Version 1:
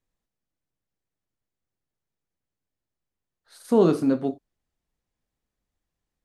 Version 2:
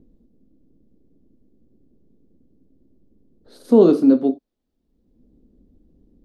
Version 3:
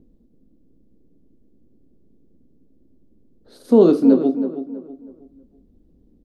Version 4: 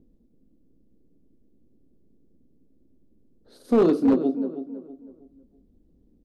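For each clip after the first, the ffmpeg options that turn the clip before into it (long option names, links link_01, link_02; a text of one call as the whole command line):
ffmpeg -i in.wav -filter_complex "[0:a]equalizer=frequency=125:width_type=o:width=1:gain=-8,equalizer=frequency=250:width_type=o:width=1:gain=11,equalizer=frequency=500:width_type=o:width=1:gain=6,equalizer=frequency=2000:width_type=o:width=1:gain=-4,equalizer=frequency=4000:width_type=o:width=1:gain=5,equalizer=frequency=8000:width_type=o:width=1:gain=-5,acrossover=split=380|2200[link_01][link_02][link_03];[link_01]acompressor=mode=upward:threshold=-29dB:ratio=2.5[link_04];[link_04][link_02][link_03]amix=inputs=3:normalize=0,volume=-1.5dB" out.wav
ffmpeg -i in.wav -filter_complex "[0:a]asplit=2[link_01][link_02];[link_02]adelay=322,lowpass=frequency=1900:poles=1,volume=-10dB,asplit=2[link_03][link_04];[link_04]adelay=322,lowpass=frequency=1900:poles=1,volume=0.35,asplit=2[link_05][link_06];[link_06]adelay=322,lowpass=frequency=1900:poles=1,volume=0.35,asplit=2[link_07][link_08];[link_08]adelay=322,lowpass=frequency=1900:poles=1,volume=0.35[link_09];[link_01][link_03][link_05][link_07][link_09]amix=inputs=5:normalize=0" out.wav
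ffmpeg -i in.wav -af "volume=8dB,asoftclip=hard,volume=-8dB,volume=-5dB" out.wav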